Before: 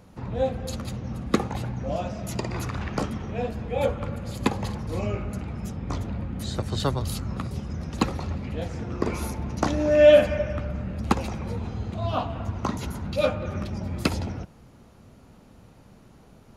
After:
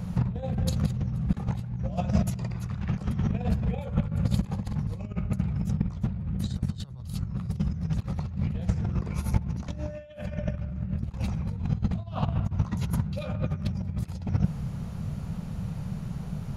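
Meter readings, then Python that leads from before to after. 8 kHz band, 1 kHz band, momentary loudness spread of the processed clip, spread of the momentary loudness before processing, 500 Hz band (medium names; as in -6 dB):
-7.0 dB, -9.5 dB, 7 LU, 7 LU, -17.0 dB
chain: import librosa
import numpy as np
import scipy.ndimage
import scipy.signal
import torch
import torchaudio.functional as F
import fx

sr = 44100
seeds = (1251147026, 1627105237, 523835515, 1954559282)

y = fx.low_shelf_res(x, sr, hz=220.0, db=8.5, q=3.0)
y = fx.over_compress(y, sr, threshold_db=-27.0, ratio=-0.5)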